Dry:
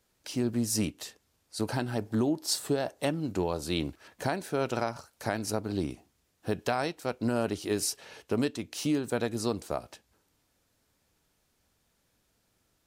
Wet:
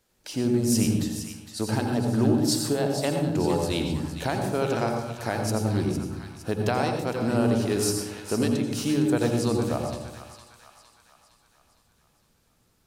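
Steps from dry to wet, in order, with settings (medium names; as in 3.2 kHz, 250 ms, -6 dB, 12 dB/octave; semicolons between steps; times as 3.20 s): two-band feedback delay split 910 Hz, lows 124 ms, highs 460 ms, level -9.5 dB; on a send at -4 dB: reverberation RT60 0.55 s, pre-delay 76 ms; on the sum: trim +2 dB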